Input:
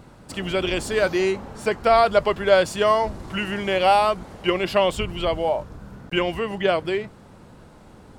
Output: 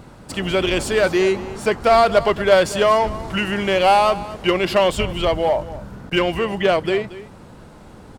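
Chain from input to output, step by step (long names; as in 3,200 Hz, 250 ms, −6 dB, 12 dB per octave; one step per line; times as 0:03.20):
in parallel at −10.5 dB: wave folding −19 dBFS
on the sum: single-tap delay 231 ms −16.5 dB
level +2.5 dB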